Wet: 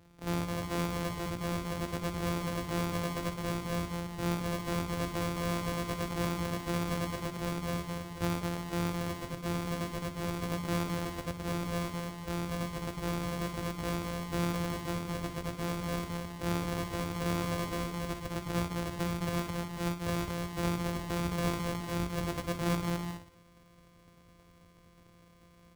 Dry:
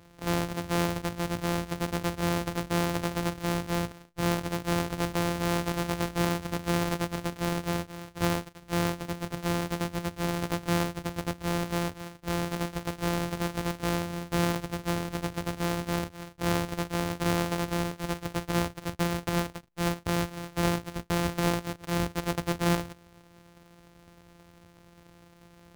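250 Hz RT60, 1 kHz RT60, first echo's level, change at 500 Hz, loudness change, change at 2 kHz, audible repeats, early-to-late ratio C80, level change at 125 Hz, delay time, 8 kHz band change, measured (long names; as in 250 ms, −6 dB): no reverb audible, no reverb audible, −11.0 dB, −4.5 dB, −4.0 dB, −5.5 dB, 4, no reverb audible, −3.0 dB, 63 ms, −5.0 dB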